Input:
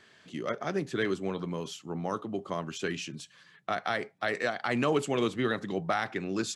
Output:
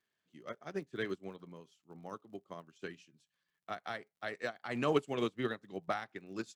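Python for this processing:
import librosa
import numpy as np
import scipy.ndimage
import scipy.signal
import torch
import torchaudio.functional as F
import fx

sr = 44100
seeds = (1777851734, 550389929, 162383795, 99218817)

y = fx.dmg_crackle(x, sr, seeds[0], per_s=66.0, level_db=-42.0)
y = fx.upward_expand(y, sr, threshold_db=-41.0, expansion=2.5)
y = F.gain(torch.from_numpy(y), -1.0).numpy()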